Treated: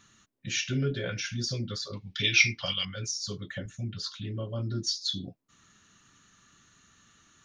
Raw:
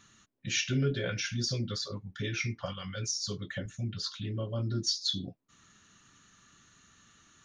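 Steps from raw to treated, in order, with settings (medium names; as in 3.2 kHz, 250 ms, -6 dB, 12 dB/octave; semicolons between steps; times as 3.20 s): 1.93–2.85 s: high-order bell 3.5 kHz +15.5 dB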